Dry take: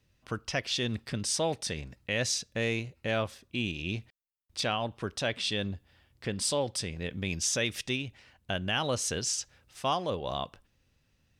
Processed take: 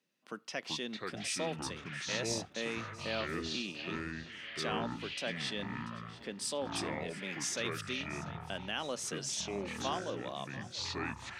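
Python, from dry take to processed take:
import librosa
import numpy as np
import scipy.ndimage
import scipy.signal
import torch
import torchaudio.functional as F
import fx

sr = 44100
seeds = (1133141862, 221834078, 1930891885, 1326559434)

y = scipy.signal.sosfilt(scipy.signal.butter(6, 180.0, 'highpass', fs=sr, output='sos'), x)
y = fx.echo_pitch(y, sr, ms=252, semitones=-6, count=3, db_per_echo=-3.0)
y = fx.echo_feedback(y, sr, ms=688, feedback_pct=54, wet_db=-17.5)
y = y * librosa.db_to_amplitude(-7.5)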